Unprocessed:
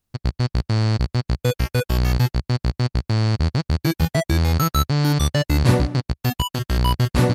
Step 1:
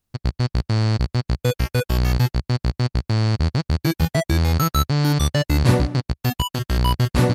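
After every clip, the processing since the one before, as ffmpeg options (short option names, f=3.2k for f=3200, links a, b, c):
-af anull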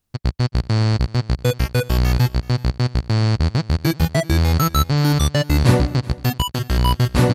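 -af "aecho=1:1:380:0.0891,volume=2dB"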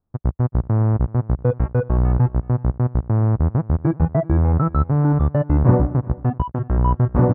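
-af "lowpass=f=1.2k:w=0.5412,lowpass=f=1.2k:w=1.3066"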